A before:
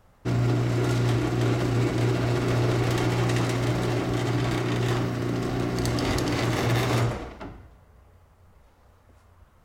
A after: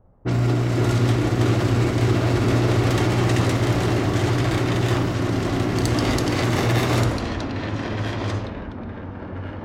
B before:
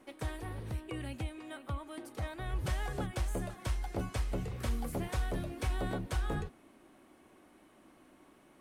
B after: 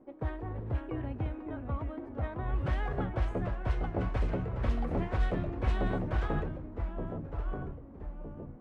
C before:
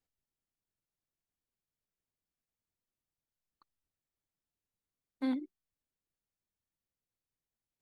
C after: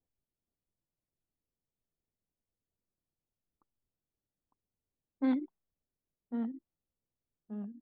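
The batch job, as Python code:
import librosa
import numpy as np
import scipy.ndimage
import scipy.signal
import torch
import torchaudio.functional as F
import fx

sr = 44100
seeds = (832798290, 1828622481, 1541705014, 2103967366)

y = fx.echo_pitch(x, sr, ms=462, semitones=-2, count=3, db_per_echo=-6.0)
y = fx.env_lowpass(y, sr, base_hz=610.0, full_db=-21.5)
y = y * 10.0 ** (3.5 / 20.0)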